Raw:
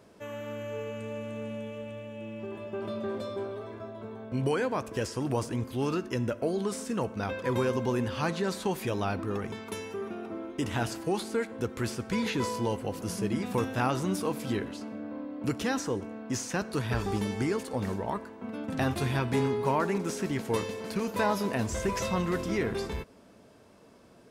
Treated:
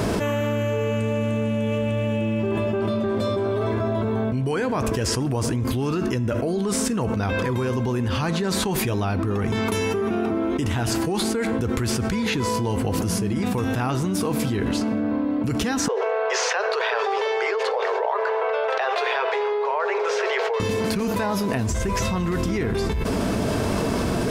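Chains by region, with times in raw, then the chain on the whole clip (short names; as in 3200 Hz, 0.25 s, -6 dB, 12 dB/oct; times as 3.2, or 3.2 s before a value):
15.88–20.6 steep high-pass 420 Hz 96 dB/oct + air absorption 220 m
whole clip: low shelf 120 Hz +10.5 dB; notch 540 Hz, Q 12; fast leveller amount 100%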